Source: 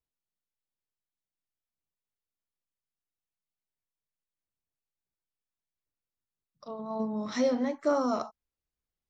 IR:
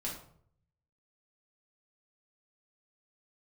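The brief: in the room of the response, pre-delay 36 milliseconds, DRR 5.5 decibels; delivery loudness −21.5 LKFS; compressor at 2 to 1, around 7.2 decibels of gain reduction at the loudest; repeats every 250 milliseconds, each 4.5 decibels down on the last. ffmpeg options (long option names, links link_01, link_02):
-filter_complex "[0:a]acompressor=threshold=-35dB:ratio=2,aecho=1:1:250|500|750|1000|1250|1500|1750|2000|2250:0.596|0.357|0.214|0.129|0.0772|0.0463|0.0278|0.0167|0.01,asplit=2[link_01][link_02];[1:a]atrim=start_sample=2205,adelay=36[link_03];[link_02][link_03]afir=irnorm=-1:irlink=0,volume=-7dB[link_04];[link_01][link_04]amix=inputs=2:normalize=0,volume=11dB"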